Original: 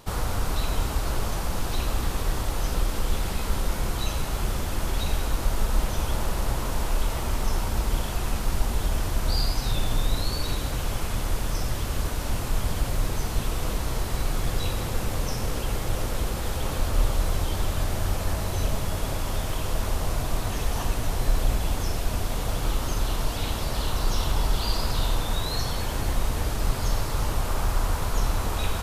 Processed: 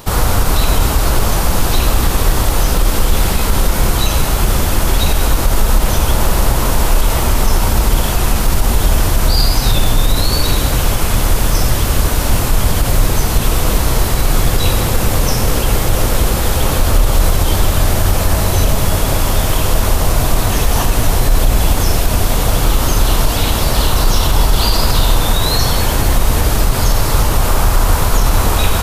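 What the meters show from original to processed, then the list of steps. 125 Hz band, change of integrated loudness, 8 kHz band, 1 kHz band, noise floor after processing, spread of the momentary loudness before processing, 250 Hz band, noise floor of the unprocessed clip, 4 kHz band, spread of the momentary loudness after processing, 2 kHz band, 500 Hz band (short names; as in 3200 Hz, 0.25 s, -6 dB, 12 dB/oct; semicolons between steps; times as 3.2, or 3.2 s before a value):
+13.0 dB, +13.5 dB, +15.5 dB, +13.5 dB, -16 dBFS, 3 LU, +13.5 dB, -30 dBFS, +14.0 dB, 1 LU, +13.5 dB, +13.5 dB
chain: high shelf 12000 Hz +8.5 dB; maximiser +15 dB; gain -1 dB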